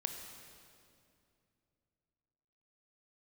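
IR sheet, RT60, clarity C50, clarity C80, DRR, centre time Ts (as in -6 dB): 2.5 s, 5.5 dB, 6.0 dB, 4.5 dB, 53 ms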